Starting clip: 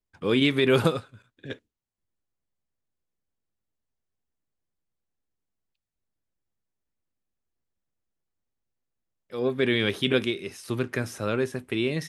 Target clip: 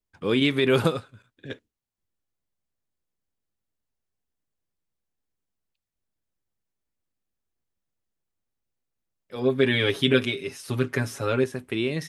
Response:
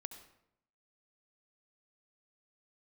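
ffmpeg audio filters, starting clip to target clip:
-filter_complex "[0:a]asettb=1/sr,asplit=3[s0][s1][s2];[s0]atrim=end=9.354[s3];[s1]atrim=start=9.35:end=11.44,asetpts=PTS-STARTPTS,afade=t=in:d=0.004:c=qsin,afade=t=out:st=2.086:d=0.004:c=qsin,aecho=1:1:7.2:0.85,atrim=end_sample=92169[s4];[s2]atrim=start=11.436[s5];[s3][s4]acrossfade=d=0.004:c1=hsin:c2=qsin[s6];[s6][s5]acrossfade=d=0.004:c1=qsin:c2=hsin"

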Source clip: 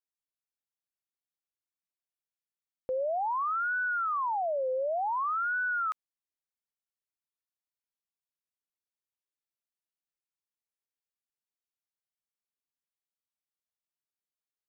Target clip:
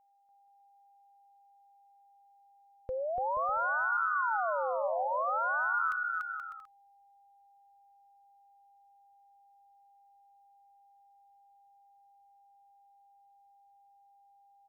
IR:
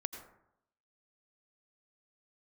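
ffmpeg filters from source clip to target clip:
-af "asubboost=boost=9:cutoff=110,aeval=exprs='val(0)+0.000631*sin(2*PI*800*n/s)':c=same,aecho=1:1:290|478.5|601|680.7|732.4:0.631|0.398|0.251|0.158|0.1,volume=0.794"

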